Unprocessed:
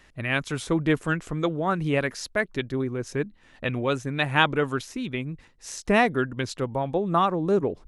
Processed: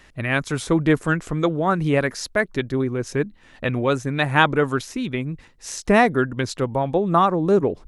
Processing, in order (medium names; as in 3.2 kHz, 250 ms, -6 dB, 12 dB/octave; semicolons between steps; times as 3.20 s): dynamic bell 2.9 kHz, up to -6 dB, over -42 dBFS, Q 2; trim +5 dB